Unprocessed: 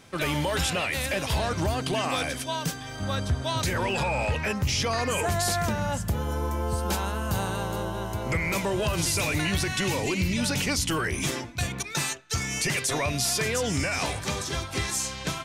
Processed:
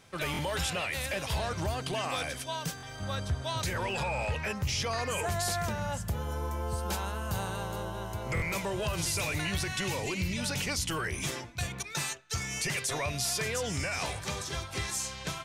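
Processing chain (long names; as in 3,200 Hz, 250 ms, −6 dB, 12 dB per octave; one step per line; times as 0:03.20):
parametric band 270 Hz −6 dB 0.7 octaves
buffer that repeats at 0:00.32/0:02.76/0:08.35, samples 1,024, times 2
level −5 dB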